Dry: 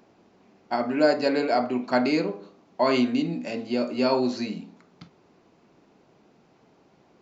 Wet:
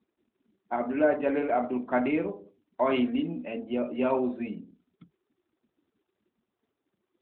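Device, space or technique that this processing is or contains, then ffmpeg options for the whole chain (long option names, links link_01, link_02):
mobile call with aggressive noise cancelling: -af "highpass=160,afftdn=noise_reduction=34:noise_floor=-44,volume=-3dB" -ar 8000 -c:a libopencore_amrnb -b:a 12200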